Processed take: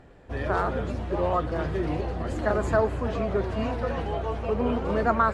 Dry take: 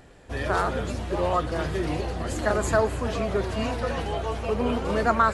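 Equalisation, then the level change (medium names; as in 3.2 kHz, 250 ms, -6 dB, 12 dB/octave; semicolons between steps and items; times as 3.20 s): low-pass 1.6 kHz 6 dB/octave; 0.0 dB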